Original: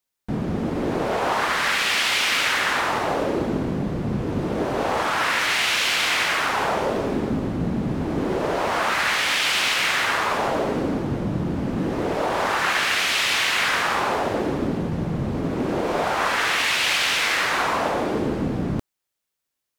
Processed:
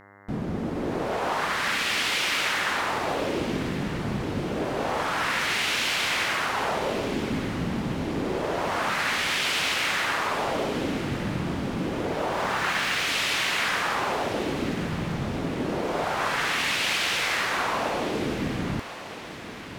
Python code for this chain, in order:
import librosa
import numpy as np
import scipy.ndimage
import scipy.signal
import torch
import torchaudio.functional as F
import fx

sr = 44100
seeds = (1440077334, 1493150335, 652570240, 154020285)

y = fx.median_filter(x, sr, points=3, at=(12.02, 13.07))
y = fx.echo_diffused(y, sr, ms=1168, feedback_pct=55, wet_db=-13.0)
y = fx.dmg_buzz(y, sr, base_hz=100.0, harmonics=21, level_db=-47.0, tilt_db=-1, odd_only=False)
y = y * librosa.db_to_amplitude(-4.5)